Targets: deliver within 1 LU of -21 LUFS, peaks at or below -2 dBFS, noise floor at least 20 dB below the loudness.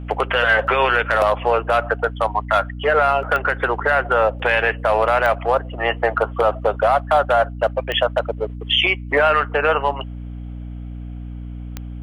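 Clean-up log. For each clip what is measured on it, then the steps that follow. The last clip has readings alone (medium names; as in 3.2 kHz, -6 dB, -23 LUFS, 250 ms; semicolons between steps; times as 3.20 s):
clicks found 4; hum 60 Hz; highest harmonic 300 Hz; hum level -28 dBFS; loudness -18.5 LUFS; peak level -6.0 dBFS; loudness target -21.0 LUFS
-> de-click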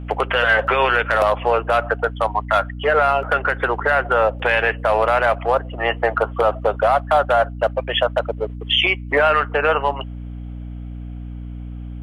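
clicks found 0; hum 60 Hz; highest harmonic 300 Hz; hum level -28 dBFS
-> hum notches 60/120/180/240/300 Hz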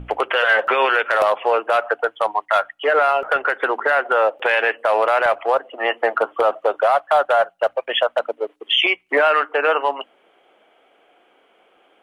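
hum not found; loudness -18.5 LUFS; peak level -7.0 dBFS; loudness target -21.0 LUFS
-> trim -2.5 dB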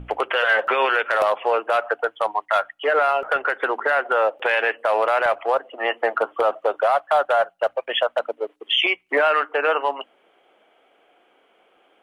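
loudness -21.0 LUFS; peak level -9.5 dBFS; noise floor -61 dBFS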